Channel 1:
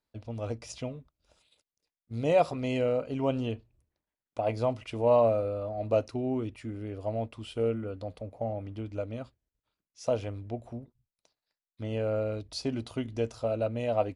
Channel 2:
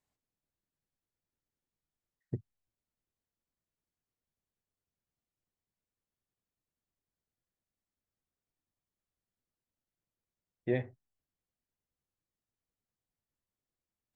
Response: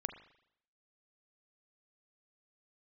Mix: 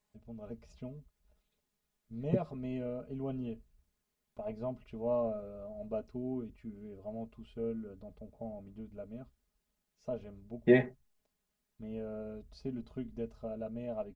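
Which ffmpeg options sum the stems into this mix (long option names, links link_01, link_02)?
-filter_complex "[0:a]aemphasis=mode=reproduction:type=riaa,volume=-20dB[link_01];[1:a]volume=2dB[link_02];[link_01][link_02]amix=inputs=2:normalize=0,aecho=1:1:4.8:0.89,dynaudnorm=framelen=120:gausssize=5:maxgain=4dB"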